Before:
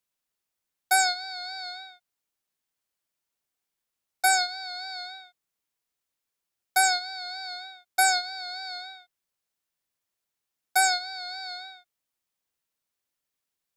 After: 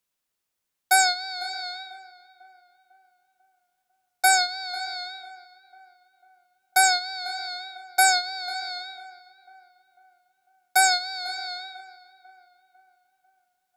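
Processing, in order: 10.91–11.36 s: treble shelf 9.3 kHz +7 dB; tape echo 497 ms, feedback 49%, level -15.5 dB, low-pass 2 kHz; trim +3 dB

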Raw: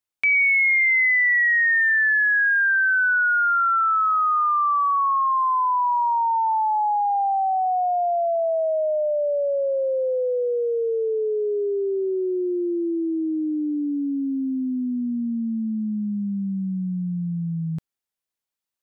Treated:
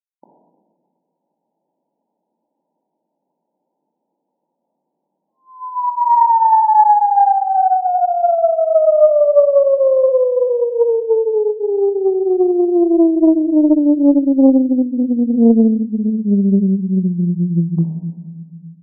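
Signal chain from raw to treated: 14.97–15.50 s: peaking EQ 270 Hz -6 dB 0.26 oct; in parallel at +2 dB: peak limiter -23.5 dBFS, peak gain reduction 8.5 dB; on the sum: bit crusher 10-bit; brick-wall FIR band-pass 160–1000 Hz; simulated room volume 1400 m³, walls mixed, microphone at 2.4 m; loudspeaker Doppler distortion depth 0.56 ms

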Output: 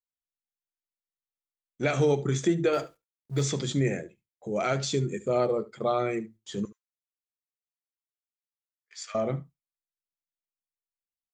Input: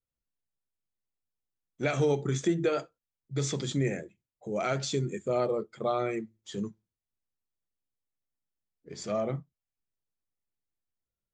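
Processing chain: 2.73–3.43 s: companding laws mixed up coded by mu; 6.65–9.15 s: high-pass 1.3 kHz 24 dB/octave; gate with hold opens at -53 dBFS; delay 73 ms -19 dB; trim +2.5 dB

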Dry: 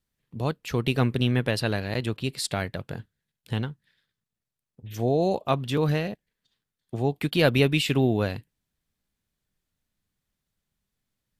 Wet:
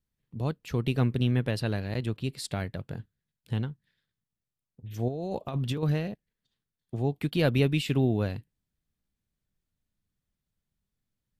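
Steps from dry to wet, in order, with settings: 5.08–5.83 s: compressor with a negative ratio -28 dBFS, ratio -1; bass shelf 340 Hz +7.5 dB; trim -7.5 dB

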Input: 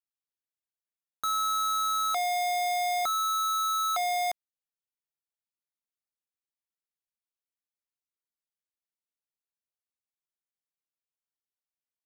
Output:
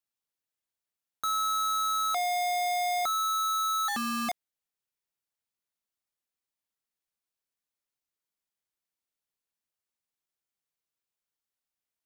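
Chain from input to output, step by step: 3.88–4.29 s: ring modulator 480 Hz; in parallel at -7 dB: integer overflow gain 45 dB

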